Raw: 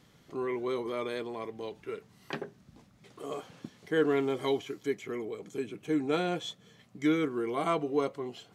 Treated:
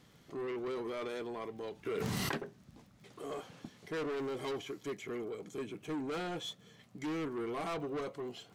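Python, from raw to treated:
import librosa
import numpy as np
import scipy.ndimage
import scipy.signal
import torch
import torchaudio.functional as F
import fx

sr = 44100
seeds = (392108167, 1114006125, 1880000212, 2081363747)

y = 10.0 ** (-33.5 / 20.0) * np.tanh(x / 10.0 ** (-33.5 / 20.0))
y = fx.dmg_crackle(y, sr, seeds[0], per_s=28.0, level_db=-52.0)
y = fx.env_flatten(y, sr, amount_pct=100, at=(1.85, 2.36), fade=0.02)
y = y * librosa.db_to_amplitude(-1.0)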